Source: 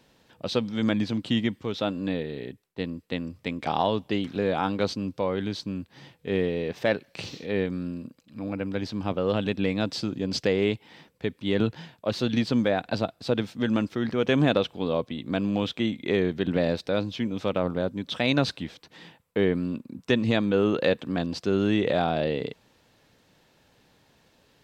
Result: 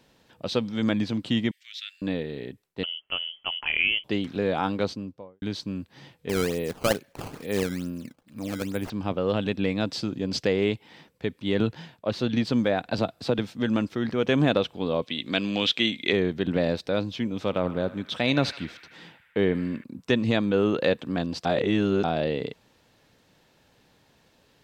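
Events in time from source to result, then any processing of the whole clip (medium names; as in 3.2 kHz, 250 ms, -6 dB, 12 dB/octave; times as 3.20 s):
1.51–2.02 s: steep high-pass 1.8 kHz 48 dB/octave
2.83–4.04 s: frequency inversion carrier 3.2 kHz
4.72–5.42 s: studio fade out
6.29–8.90 s: decimation with a swept rate 14×, swing 160% 2.3 Hz
11.98–12.45 s: treble shelf 4.9 kHz -6.5 dB
12.98–13.39 s: three bands compressed up and down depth 70%
15.02–16.13 s: frequency weighting D
17.34–19.84 s: band-passed feedback delay 76 ms, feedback 82%, band-pass 1.8 kHz, level -13.5 dB
21.45–22.04 s: reverse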